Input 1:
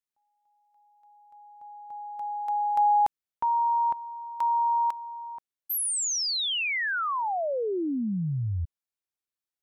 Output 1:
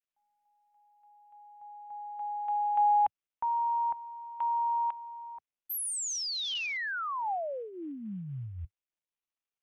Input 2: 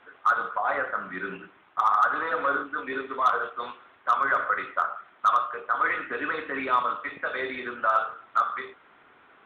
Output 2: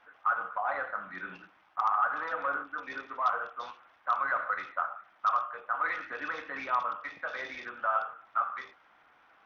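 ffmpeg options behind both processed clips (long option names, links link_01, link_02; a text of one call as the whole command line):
ffmpeg -i in.wav -af "equalizer=frequency=100:width_type=o:width=0.33:gain=-8,equalizer=frequency=160:width_type=o:width=0.33:gain=-5,equalizer=frequency=250:width_type=o:width=0.33:gain=-7,equalizer=frequency=400:width_type=o:width=0.33:gain=-12,equalizer=frequency=800:width_type=o:width=0.33:gain=4,volume=-6dB" -ar 48000 -c:a sbc -b:a 64k out.sbc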